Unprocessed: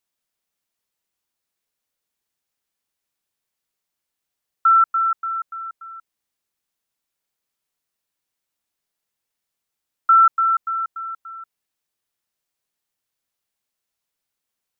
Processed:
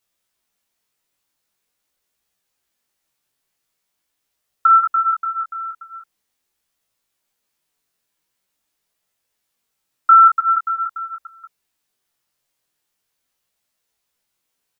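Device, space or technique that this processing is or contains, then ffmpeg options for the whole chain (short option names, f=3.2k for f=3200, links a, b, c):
double-tracked vocal: -filter_complex "[0:a]asplit=2[a][b];[b]adelay=16,volume=-5.5dB[c];[a][c]amix=inputs=2:normalize=0,flanger=delay=17.5:depth=5.7:speed=0.44,volume=8.5dB"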